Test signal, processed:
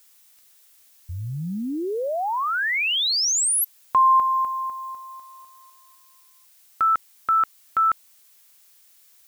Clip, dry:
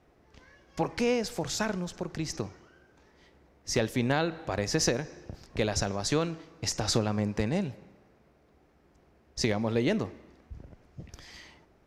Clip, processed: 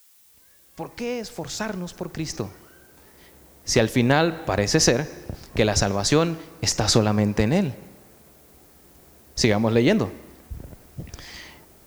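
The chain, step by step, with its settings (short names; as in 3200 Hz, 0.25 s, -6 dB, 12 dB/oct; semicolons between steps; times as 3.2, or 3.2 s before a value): opening faded in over 3.61 s; added noise blue -64 dBFS; gain +8.5 dB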